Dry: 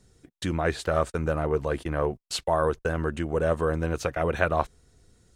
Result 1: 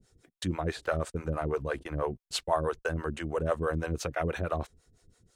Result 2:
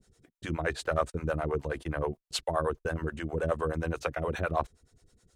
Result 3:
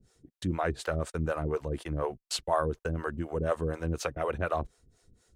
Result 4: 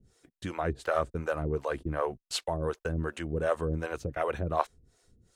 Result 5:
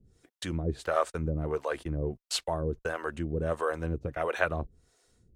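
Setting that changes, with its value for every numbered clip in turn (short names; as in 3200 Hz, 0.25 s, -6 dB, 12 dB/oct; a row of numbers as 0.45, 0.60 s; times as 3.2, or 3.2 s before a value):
harmonic tremolo, rate: 6.1, 9.5, 4.1, 2.7, 1.5 Hz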